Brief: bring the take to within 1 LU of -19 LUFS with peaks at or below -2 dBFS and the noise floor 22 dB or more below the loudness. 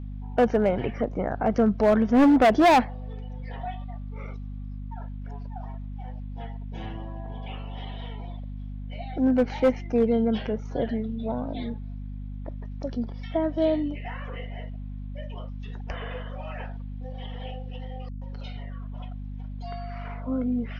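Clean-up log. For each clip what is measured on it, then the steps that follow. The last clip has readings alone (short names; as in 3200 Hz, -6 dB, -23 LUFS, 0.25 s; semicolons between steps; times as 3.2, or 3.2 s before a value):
clipped 1.0%; flat tops at -14.0 dBFS; hum 50 Hz; harmonics up to 250 Hz; hum level -33 dBFS; loudness -26.0 LUFS; peak -14.0 dBFS; loudness target -19.0 LUFS
-> clip repair -14 dBFS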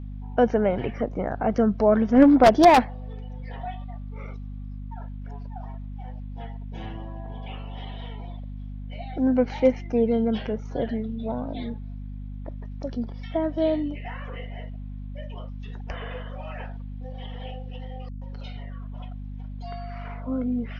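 clipped 0.0%; hum 50 Hz; harmonics up to 200 Hz; hum level -33 dBFS
-> de-hum 50 Hz, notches 4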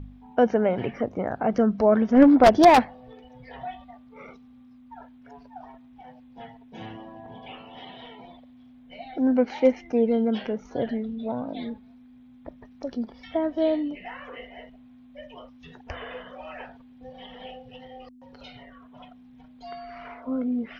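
hum none; loudness -22.5 LUFS; peak -4.5 dBFS; loudness target -19.0 LUFS
-> gain +3.5 dB; limiter -2 dBFS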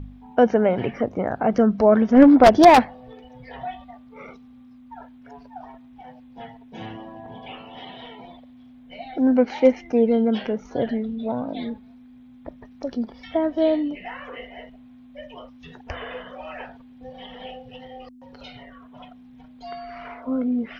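loudness -19.0 LUFS; peak -2.0 dBFS; noise floor -48 dBFS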